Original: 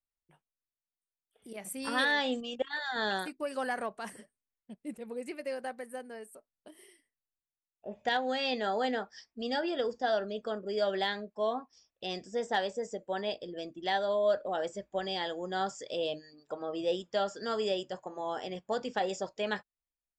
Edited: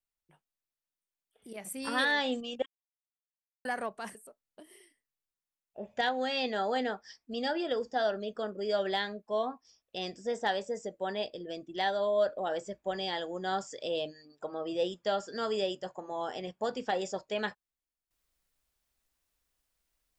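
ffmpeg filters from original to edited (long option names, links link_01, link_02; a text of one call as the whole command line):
ffmpeg -i in.wav -filter_complex "[0:a]asplit=4[link_01][link_02][link_03][link_04];[link_01]atrim=end=2.66,asetpts=PTS-STARTPTS,afade=type=out:start_time=2.656:duration=0.004:curve=hsin[link_05];[link_02]atrim=start=2.66:end=3.65,asetpts=PTS-STARTPTS,volume=0[link_06];[link_03]atrim=start=3.65:end=4.152,asetpts=PTS-STARTPTS,afade=type=in:duration=0.004:curve=hsin[link_07];[link_04]atrim=start=6.228[link_08];[link_05][link_06][link_07]concat=n=3:v=0:a=1[link_09];[link_09][link_08]acrossfade=duration=0.004:curve1=hsin:curve2=hsin" out.wav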